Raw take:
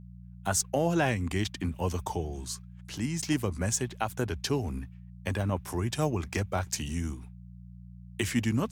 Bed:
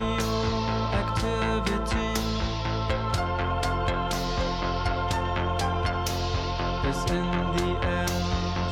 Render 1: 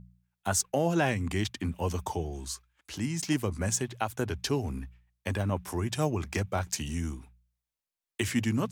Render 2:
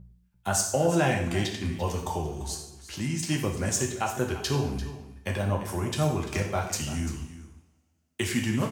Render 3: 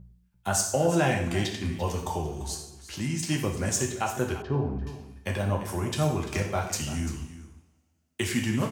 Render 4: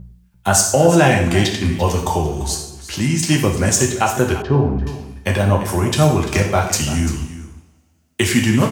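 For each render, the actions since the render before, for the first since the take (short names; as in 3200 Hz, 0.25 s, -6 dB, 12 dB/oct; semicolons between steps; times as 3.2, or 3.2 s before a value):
de-hum 60 Hz, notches 3
echo 0.343 s -14.5 dB; two-slope reverb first 0.66 s, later 2.4 s, from -27 dB, DRR 0.5 dB
4.42–4.87 LPF 1100 Hz
gain +12 dB; limiter -2 dBFS, peak gain reduction 2 dB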